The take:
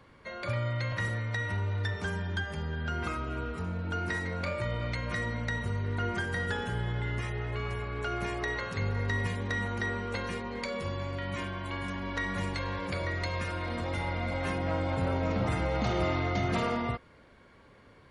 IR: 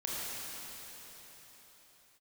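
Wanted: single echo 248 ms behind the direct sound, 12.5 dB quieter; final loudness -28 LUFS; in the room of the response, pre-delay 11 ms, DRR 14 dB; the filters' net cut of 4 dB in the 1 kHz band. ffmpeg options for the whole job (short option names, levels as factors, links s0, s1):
-filter_complex "[0:a]equalizer=f=1000:t=o:g=-5.5,aecho=1:1:248:0.237,asplit=2[s0][s1];[1:a]atrim=start_sample=2205,adelay=11[s2];[s1][s2]afir=irnorm=-1:irlink=0,volume=0.112[s3];[s0][s3]amix=inputs=2:normalize=0,volume=1.78"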